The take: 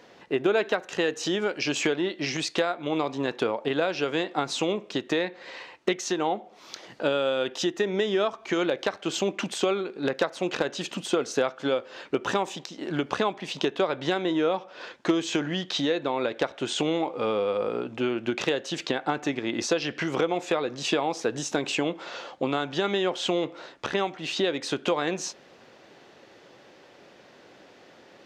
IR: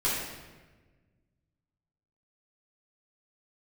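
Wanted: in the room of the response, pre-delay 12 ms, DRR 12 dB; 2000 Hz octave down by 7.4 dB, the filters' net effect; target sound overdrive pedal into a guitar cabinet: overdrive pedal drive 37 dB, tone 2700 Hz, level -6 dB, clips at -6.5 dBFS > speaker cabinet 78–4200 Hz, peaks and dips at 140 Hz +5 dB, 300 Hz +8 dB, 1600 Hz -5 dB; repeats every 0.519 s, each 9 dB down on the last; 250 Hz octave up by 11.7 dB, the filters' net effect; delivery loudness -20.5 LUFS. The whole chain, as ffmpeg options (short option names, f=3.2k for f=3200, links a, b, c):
-filter_complex "[0:a]equalizer=f=250:t=o:g=9,equalizer=f=2k:t=o:g=-7.5,aecho=1:1:519|1038|1557|2076:0.355|0.124|0.0435|0.0152,asplit=2[a][b];[1:a]atrim=start_sample=2205,adelay=12[c];[b][c]afir=irnorm=-1:irlink=0,volume=-22.5dB[d];[a][d]amix=inputs=2:normalize=0,asplit=2[e][f];[f]highpass=f=720:p=1,volume=37dB,asoftclip=type=tanh:threshold=-6.5dB[g];[e][g]amix=inputs=2:normalize=0,lowpass=f=2.7k:p=1,volume=-6dB,highpass=78,equalizer=f=140:t=q:w=4:g=5,equalizer=f=300:t=q:w=4:g=8,equalizer=f=1.6k:t=q:w=4:g=-5,lowpass=f=4.2k:w=0.5412,lowpass=f=4.2k:w=1.3066,volume=-8.5dB"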